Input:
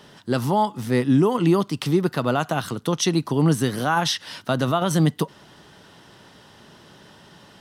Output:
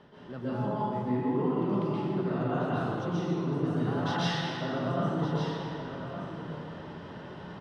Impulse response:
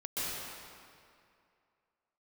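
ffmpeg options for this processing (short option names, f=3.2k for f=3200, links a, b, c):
-filter_complex "[0:a]lowpass=f=2.3k:p=1,aemphasis=mode=reproduction:type=75fm,areverse,acompressor=threshold=-32dB:ratio=10,areverse,aecho=1:1:1166:0.316[a];[1:a]atrim=start_sample=2205[b];[a][b]afir=irnorm=-1:irlink=0"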